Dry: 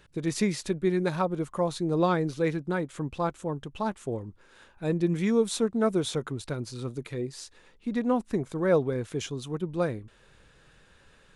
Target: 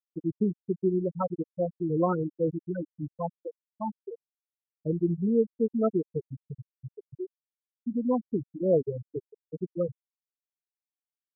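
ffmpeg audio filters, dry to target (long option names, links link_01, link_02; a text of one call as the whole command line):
ffmpeg -i in.wav -af "aeval=exprs='val(0)+0.00562*sin(2*PI*1300*n/s)':channel_layout=same,afftfilt=real='re*gte(hypot(re,im),0.251)':imag='im*gte(hypot(re,im),0.251)':win_size=1024:overlap=0.75" out.wav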